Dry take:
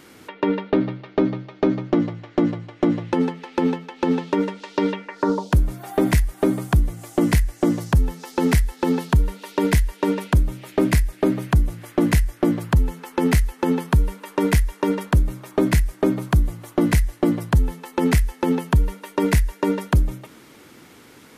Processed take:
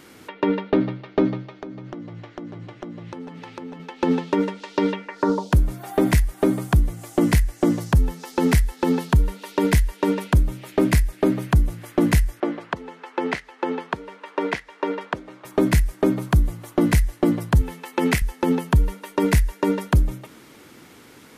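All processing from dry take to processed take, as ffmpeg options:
-filter_complex "[0:a]asettb=1/sr,asplit=3[a][b][c];[a]atrim=end=1.574[d];[b]atrim=start=1.57:end=3.8,asetpts=PTS-STARTPTS,afade=t=in:d=0.004:c=qsin,afade=t=out:st=2.226:d=0.004:c=qsin,acompressor=threshold=-32dB:ratio=8:attack=3.2:release=140:knee=1:detection=peak,aecho=1:1:895:0.251,atrim=end_sample=98343[e];[c]atrim=start=3.796[f];[d][e]acrossfade=d=0.004:c1=hsin:c2=qsin[g];[g][f]acrossfade=d=0.004:c1=qsin:c2=hsin,asettb=1/sr,asplit=3[h][i][j];[h]atrim=end=12.404[k];[i]atrim=start=12.4:end=15.45,asetpts=PTS-STARTPTS,afade=t=in:d=0.004:c=qsin,afade=t=out:st=3.046:d=0.004:c=qsin,acrusher=bits=8:mix=0:aa=0.5,highpass=410,lowpass=3.4k[l];[j]atrim=start=15.446[m];[k][l]acrossfade=d=0.004:c1=hsin:c2=qsin[n];[n][m]acrossfade=d=0.004:c1=qsin:c2=hsin,asettb=1/sr,asplit=3[o][p][q];[o]atrim=end=17.614[r];[p]atrim=start=17.61:end=18.22,asetpts=PTS-STARTPTS,afade=t=in:d=0.004:c=qsin,afade=t=out:st=0.606:d=0.004:c=qsin,highpass=f=180:p=1,equalizer=f=2.4k:t=o:w=1.1:g=4.5[s];[q]atrim=start=18.216[t];[r][s]acrossfade=d=0.004:c1=hsin:c2=qsin[u];[u][t]acrossfade=d=0.004:c1=qsin:c2=hsin"

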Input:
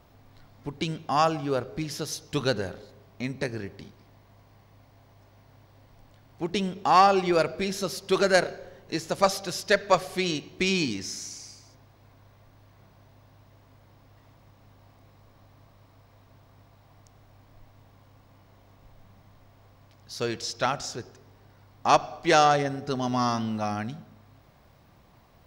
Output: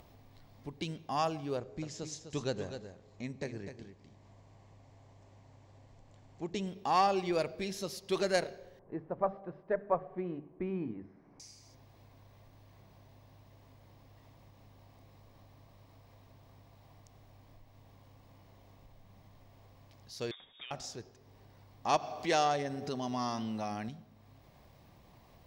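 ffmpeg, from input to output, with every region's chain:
-filter_complex "[0:a]asettb=1/sr,asplit=3[a][b][c];[a]atrim=end=1.574[d];[b]atrim=start=1.57:end=6.67,asetpts=PTS-STARTPTS,afade=t=in:d=0.004:c=qsin,afade=t=out:st=5.096:d=0.004:c=qsin,lowpass=f=7.3k:t=q:w=6.9,aemphasis=mode=reproduction:type=75kf,aecho=1:1:252:0.355,atrim=end_sample=224910[e];[c]atrim=start=6.666[f];[d][e]acrossfade=d=0.004:c1=hsin:c2=qsin[g];[g][f]acrossfade=d=0.004:c1=qsin:c2=hsin,asettb=1/sr,asplit=3[h][i][j];[h]atrim=end=8.794[k];[i]atrim=start=8.79:end=11.4,asetpts=PTS-STARTPTS,afade=t=in:d=0.004:c=qsin,afade=t=out:st=2.606:d=0.004:c=qsin,lowpass=f=1.4k:w=0.5412,lowpass=f=1.4k:w=1.3066,bandreject=f=50:t=h:w=6,bandreject=f=100:t=h:w=6,bandreject=f=150:t=h:w=6,bandreject=f=200:t=h:w=6,bandreject=f=250:t=h:w=6,bandreject=f=300:t=h:w=6[l];[j]atrim=start=11.396[m];[k][l]acrossfade=d=0.004:c1=hsin:c2=qsin[n];[n][m]acrossfade=d=0.004:c1=qsin:c2=hsin,asettb=1/sr,asplit=3[o][p][q];[o]atrim=end=20.314[r];[p]atrim=start=20.31:end=20.71,asetpts=PTS-STARTPTS,afade=t=in:d=0.004:c=qsin,afade=t=out:st=0.396:d=0.004:c=qsin,equalizer=f=2.3k:t=o:w=0.37:g=5.5,acompressor=threshold=-35dB:ratio=6:attack=3.2:release=140:knee=1:detection=peak,lowpass=f=3.2k:t=q:w=0.5098,lowpass=f=3.2k:t=q:w=0.6013,lowpass=f=3.2k:t=q:w=0.9,lowpass=f=3.2k:t=q:w=2.563,afreqshift=-3800[s];[q]atrim=start=20.706[t];[r][s]acrossfade=d=0.004:c1=hsin:c2=qsin[u];[u][t]acrossfade=d=0.004:c1=qsin:c2=hsin,asettb=1/sr,asplit=3[v][w][x];[v]atrim=end=21.964[y];[w]atrim=start=21.96:end=23.89,asetpts=PTS-STARTPTS,afade=t=in:d=0.004:c=qsin,afade=t=out:st=1.926:d=0.004:c=qsin,highpass=f=140:p=1,acompressor=mode=upward:threshold=-22dB:ratio=2.5:attack=3.2:release=140:knee=2.83:detection=peak[z];[x]atrim=start=23.886[aa];[y][z]acrossfade=d=0.004:c1=hsin:c2=qsin[ab];[ab][aa]acrossfade=d=0.004:c1=qsin:c2=hsin,equalizer=f=1.4k:w=3.4:g=-7,acompressor=mode=upward:threshold=-42dB:ratio=2.5,volume=-8.5dB"

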